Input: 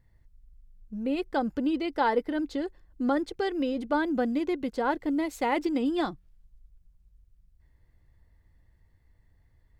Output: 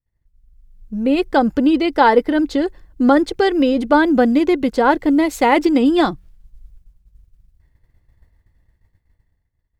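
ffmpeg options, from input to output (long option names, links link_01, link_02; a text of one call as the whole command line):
ffmpeg -i in.wav -af "agate=range=-33dB:threshold=-51dB:ratio=3:detection=peak,dynaudnorm=framelen=170:gausssize=9:maxgain=14dB,volume=1dB" out.wav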